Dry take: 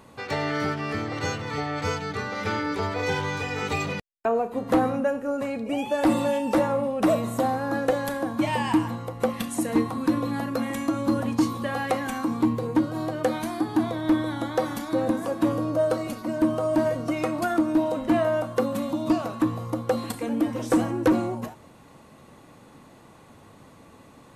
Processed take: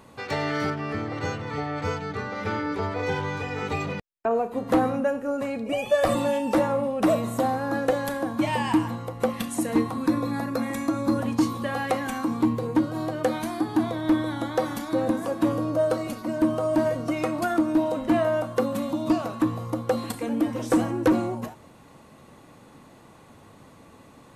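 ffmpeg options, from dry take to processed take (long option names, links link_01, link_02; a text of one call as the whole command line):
ffmpeg -i in.wav -filter_complex "[0:a]asettb=1/sr,asplit=3[link_01][link_02][link_03];[link_01]atrim=end=0.704[link_04];[link_02]atrim=start=0.7:end=4.31,asetpts=PTS-STARTPTS,afade=type=in:duration=0.004:curve=qsin,afade=type=out:start_time=3.606:duration=0.004:curve=qsin,highshelf=frequency=2700:gain=-8.5[link_05];[link_03]atrim=start=4.306[link_06];[link_04][link_05]acrossfade=duration=0.004:curve1=hsin:curve2=qsin[link_07];[link_07][link_06]acrossfade=duration=0.004:curve1=qsin:curve2=hsin,asettb=1/sr,asplit=3[link_08][link_09][link_10];[link_08]atrim=end=5.724[link_11];[link_09]atrim=start=5.72:end=6.15,asetpts=PTS-STARTPTS,afade=type=in:duration=0.004:curve=qsin,afade=type=out:start_time=0.426:duration=0.004:curve=qsin,aecho=1:1:1.7:0.86,atrim=end_sample=18963[link_12];[link_10]atrim=start=6.146[link_13];[link_11][link_12]acrossfade=duration=0.004:curve1=hsin:curve2=qsin[link_14];[link_14][link_13]acrossfade=duration=0.004:curve1=qsin:curve2=hsin,asettb=1/sr,asplit=3[link_15][link_16][link_17];[link_15]atrim=end=10.064[link_18];[link_16]atrim=start=10.06:end=11.19,asetpts=PTS-STARTPTS,afade=type=in:duration=0.004:curve=qsin,afade=type=out:start_time=1.126:duration=0.004:curve=qsin,asuperstop=centerf=3000:order=4:qfactor=5.7[link_19];[link_17]atrim=start=11.186[link_20];[link_18][link_19]acrossfade=duration=0.004:curve1=hsin:curve2=qsin[link_21];[link_21][link_20]acrossfade=duration=0.004:curve1=qsin:curve2=hsin" out.wav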